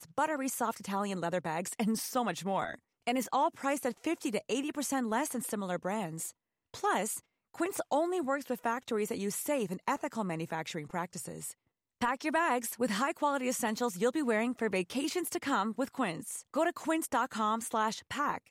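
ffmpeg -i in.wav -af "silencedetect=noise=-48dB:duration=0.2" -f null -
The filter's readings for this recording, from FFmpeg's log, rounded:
silence_start: 2.75
silence_end: 3.07 | silence_duration: 0.32
silence_start: 6.31
silence_end: 6.74 | silence_duration: 0.43
silence_start: 7.20
silence_end: 7.54 | silence_duration: 0.35
silence_start: 11.52
silence_end: 12.01 | silence_duration: 0.49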